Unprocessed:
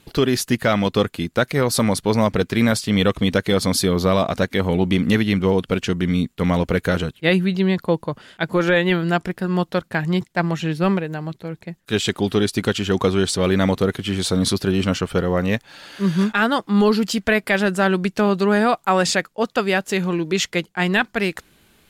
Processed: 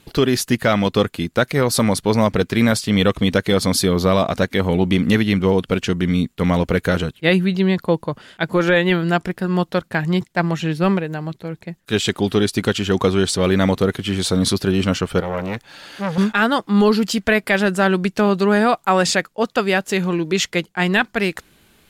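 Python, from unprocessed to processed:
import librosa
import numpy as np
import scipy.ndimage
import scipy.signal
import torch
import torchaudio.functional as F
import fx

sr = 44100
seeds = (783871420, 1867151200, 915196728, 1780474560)

y = fx.transformer_sat(x, sr, knee_hz=1300.0, at=(15.2, 16.18))
y = F.gain(torch.from_numpy(y), 1.5).numpy()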